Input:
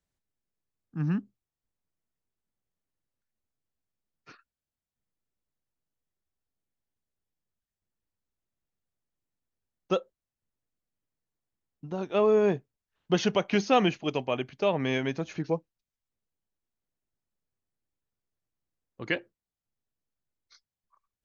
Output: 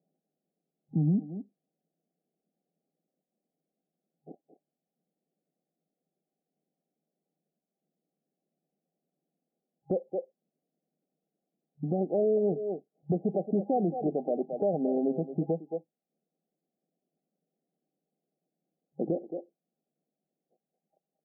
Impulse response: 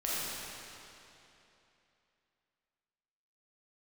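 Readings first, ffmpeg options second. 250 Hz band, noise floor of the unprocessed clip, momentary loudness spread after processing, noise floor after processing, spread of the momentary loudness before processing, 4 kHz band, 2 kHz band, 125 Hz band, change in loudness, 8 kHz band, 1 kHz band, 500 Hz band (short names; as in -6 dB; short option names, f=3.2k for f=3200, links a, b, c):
+0.5 dB, under -85 dBFS, 12 LU, under -85 dBFS, 11 LU, under -40 dB, under -40 dB, +1.0 dB, -2.5 dB, n/a, -5.5 dB, -1.5 dB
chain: -filter_complex "[0:a]asplit=2[a][b];[b]adelay=220,highpass=300,lowpass=3.4k,asoftclip=type=hard:threshold=-20.5dB,volume=-11dB[c];[a][c]amix=inputs=2:normalize=0,afftfilt=real='re*between(b*sr/4096,140,810)':imag='im*between(b*sr/4096,140,810)':win_size=4096:overlap=0.75,asplit=2[d][e];[e]acompressor=threshold=-36dB:ratio=6,volume=-2dB[f];[d][f]amix=inputs=2:normalize=0,alimiter=level_in=1.5dB:limit=-24dB:level=0:latency=1:release=427,volume=-1.5dB,volume=6.5dB"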